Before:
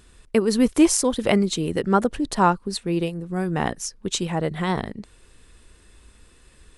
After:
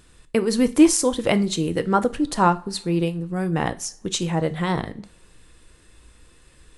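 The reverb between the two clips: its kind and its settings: two-slope reverb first 0.31 s, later 1.7 s, from -26 dB, DRR 10 dB

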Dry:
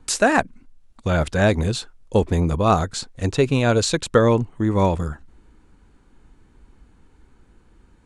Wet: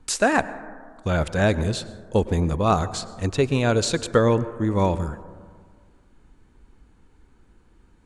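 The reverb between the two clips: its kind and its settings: plate-style reverb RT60 1.8 s, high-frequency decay 0.25×, pre-delay 90 ms, DRR 15 dB; trim -2.5 dB

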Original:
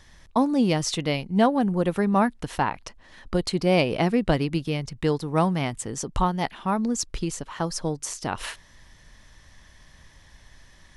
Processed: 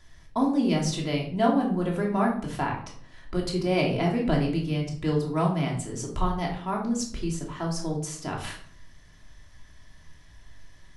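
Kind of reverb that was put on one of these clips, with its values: simulated room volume 730 m³, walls furnished, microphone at 3 m; trim -7.5 dB

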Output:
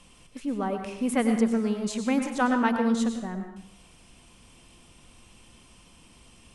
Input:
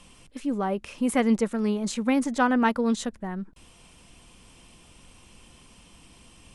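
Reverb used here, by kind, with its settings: plate-style reverb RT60 0.7 s, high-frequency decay 0.85×, pre-delay 85 ms, DRR 5.5 dB; trim -2.5 dB

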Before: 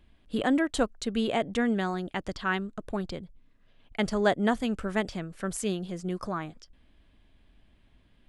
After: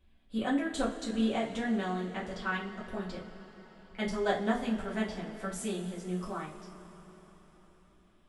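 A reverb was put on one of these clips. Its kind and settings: two-slope reverb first 0.3 s, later 4.6 s, from -20 dB, DRR -6 dB; trim -11.5 dB

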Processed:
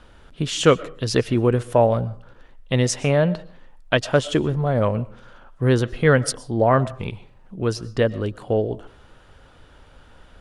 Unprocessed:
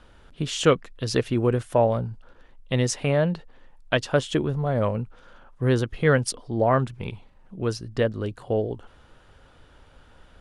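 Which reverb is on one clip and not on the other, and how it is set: algorithmic reverb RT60 0.41 s, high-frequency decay 0.6×, pre-delay 80 ms, DRR 19 dB; trim +3.5 dB

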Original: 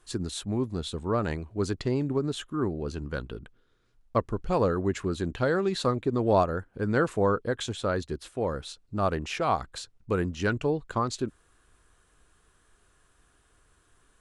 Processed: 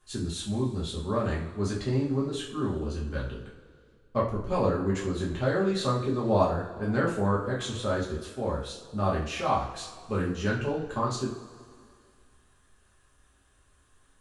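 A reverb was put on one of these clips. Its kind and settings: two-slope reverb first 0.41 s, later 2.2 s, from -18 dB, DRR -6 dB; trim -7.5 dB

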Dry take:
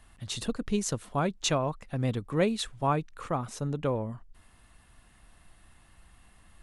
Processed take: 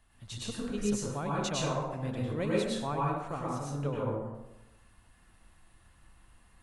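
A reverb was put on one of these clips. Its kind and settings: plate-style reverb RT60 0.98 s, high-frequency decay 0.55×, pre-delay 90 ms, DRR -5.5 dB; trim -9.5 dB

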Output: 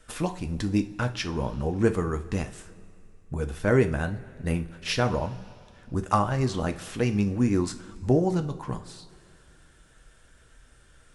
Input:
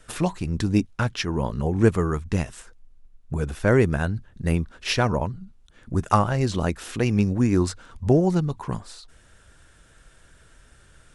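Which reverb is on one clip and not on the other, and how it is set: two-slope reverb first 0.32 s, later 2.6 s, from -18 dB, DRR 7 dB; trim -4 dB

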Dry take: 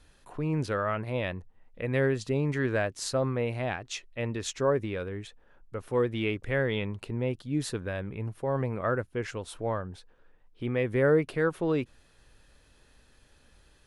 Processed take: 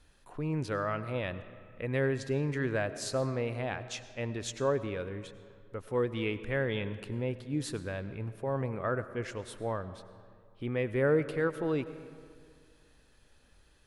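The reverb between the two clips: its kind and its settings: algorithmic reverb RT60 2.1 s, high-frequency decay 0.6×, pre-delay 60 ms, DRR 13 dB; trim -3.5 dB

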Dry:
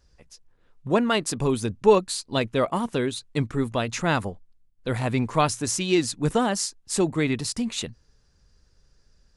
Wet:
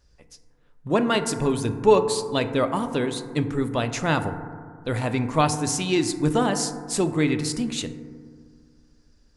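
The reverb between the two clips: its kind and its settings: FDN reverb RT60 1.9 s, low-frequency decay 1.2×, high-frequency decay 0.25×, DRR 8 dB

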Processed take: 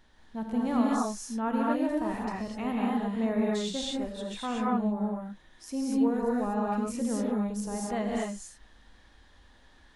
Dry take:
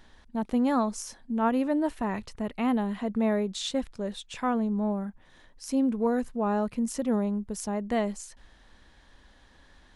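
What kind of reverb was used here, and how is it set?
gated-style reverb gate 270 ms rising, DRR -4 dB; trim -6.5 dB

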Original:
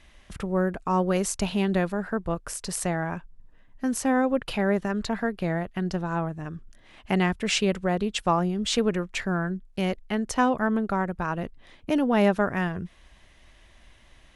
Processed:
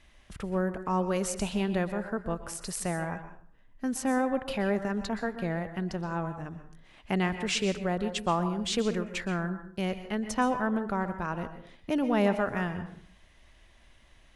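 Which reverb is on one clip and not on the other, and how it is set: plate-style reverb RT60 0.51 s, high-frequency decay 0.65×, pre-delay 110 ms, DRR 9.5 dB; trim -4.5 dB

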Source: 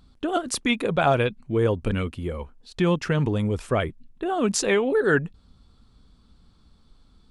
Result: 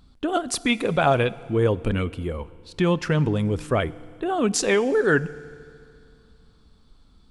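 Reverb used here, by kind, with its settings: FDN reverb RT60 2.4 s, low-frequency decay 1×, high-frequency decay 0.9×, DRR 18 dB; trim +1 dB

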